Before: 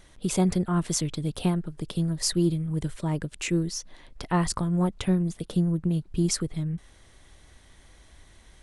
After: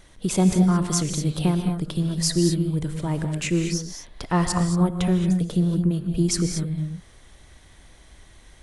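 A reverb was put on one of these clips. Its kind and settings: gated-style reverb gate 250 ms rising, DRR 5.5 dB; trim +2.5 dB

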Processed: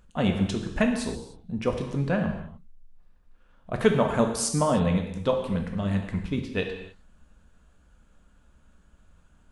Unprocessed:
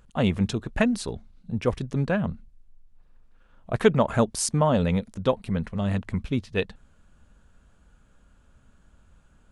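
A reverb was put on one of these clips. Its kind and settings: gated-style reverb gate 330 ms falling, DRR 3 dB; trim -2.5 dB

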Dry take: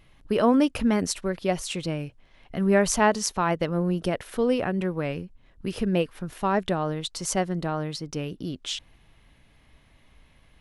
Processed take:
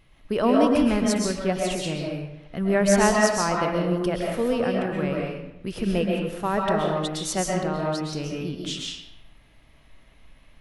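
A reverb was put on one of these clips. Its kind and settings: algorithmic reverb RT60 0.88 s, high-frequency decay 0.75×, pre-delay 90 ms, DRR -1.5 dB; trim -1.5 dB

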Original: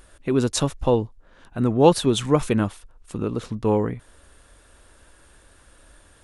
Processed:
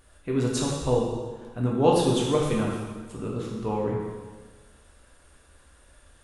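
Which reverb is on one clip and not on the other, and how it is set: plate-style reverb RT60 1.4 s, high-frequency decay 0.95×, DRR -3.5 dB; trim -8.5 dB

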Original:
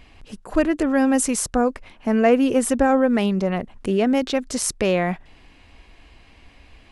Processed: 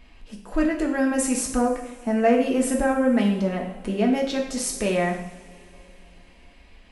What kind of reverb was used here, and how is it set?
two-slope reverb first 0.63 s, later 3.5 s, from -21 dB, DRR -0.5 dB; trim -6 dB

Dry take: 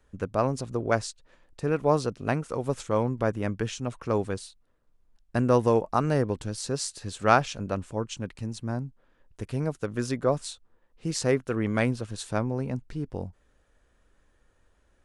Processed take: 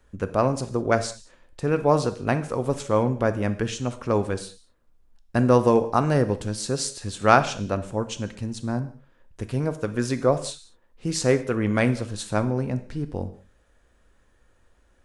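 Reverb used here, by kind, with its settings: gated-style reverb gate 230 ms falling, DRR 10 dB; trim +3.5 dB

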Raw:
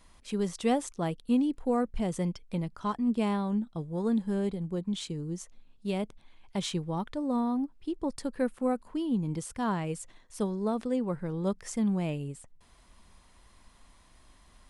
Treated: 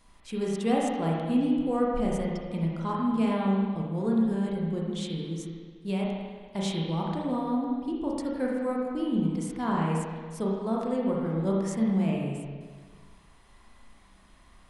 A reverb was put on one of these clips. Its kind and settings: spring tank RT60 1.6 s, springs 31/36/49 ms, chirp 50 ms, DRR -3.5 dB; trim -2 dB

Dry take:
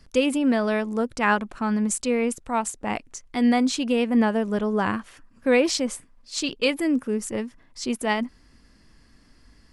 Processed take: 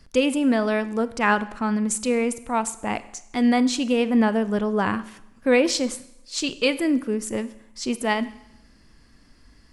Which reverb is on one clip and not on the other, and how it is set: Schroeder reverb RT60 0.81 s, combs from 32 ms, DRR 15 dB; trim +1 dB

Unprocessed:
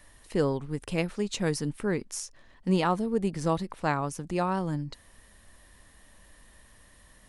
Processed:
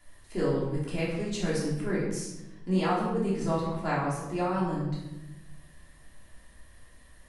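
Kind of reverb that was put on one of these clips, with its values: simulated room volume 430 m³, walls mixed, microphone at 3.1 m; trim -9 dB

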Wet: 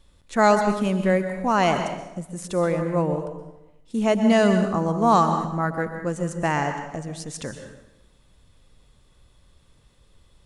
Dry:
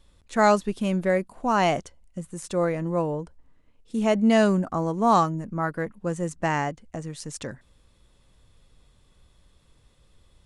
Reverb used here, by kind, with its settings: plate-style reverb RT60 0.91 s, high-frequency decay 0.8×, pre-delay 110 ms, DRR 7 dB; trim +1.5 dB

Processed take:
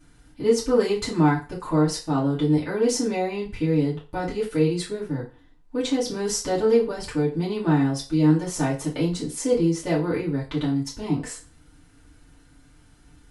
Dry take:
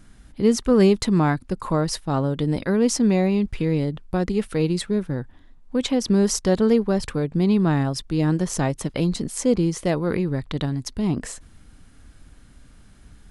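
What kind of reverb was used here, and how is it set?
FDN reverb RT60 0.34 s, low-frequency decay 0.75×, high-frequency decay 0.9×, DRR -8 dB; trim -10 dB

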